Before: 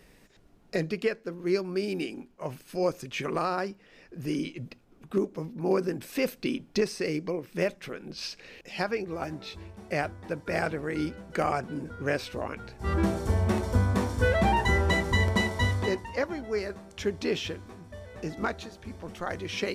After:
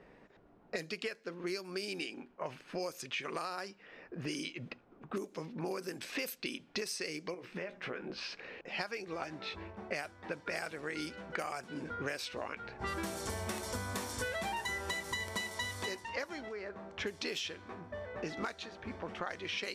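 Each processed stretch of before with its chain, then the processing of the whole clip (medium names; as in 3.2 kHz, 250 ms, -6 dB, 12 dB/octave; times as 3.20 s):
7.34–8.35 s: compression 10:1, threshold -36 dBFS + doubling 16 ms -7 dB
16.48–16.93 s: block-companded coder 5-bit + steep low-pass 9.4 kHz + compression 4:1, threshold -42 dBFS
whole clip: level-controlled noise filter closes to 920 Hz, open at -24 dBFS; tilt EQ +3.5 dB/octave; compression 8:1, threshold -42 dBFS; trim +6 dB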